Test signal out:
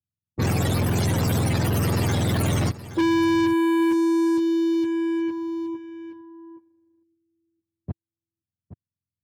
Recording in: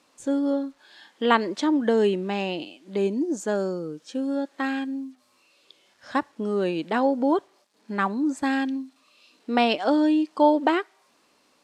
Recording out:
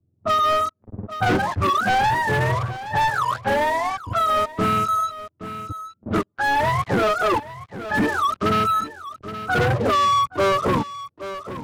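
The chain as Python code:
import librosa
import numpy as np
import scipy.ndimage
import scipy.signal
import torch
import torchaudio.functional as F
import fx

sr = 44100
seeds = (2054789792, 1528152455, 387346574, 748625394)

p1 = fx.octave_mirror(x, sr, pivot_hz=590.0)
p2 = fx.leveller(p1, sr, passes=5)
p3 = fx.env_lowpass(p2, sr, base_hz=320.0, full_db=-12.5)
p4 = p3 + fx.echo_single(p3, sr, ms=821, db=-18.0, dry=0)
p5 = fx.band_squash(p4, sr, depth_pct=40)
y = p5 * 10.0 ** (-8.5 / 20.0)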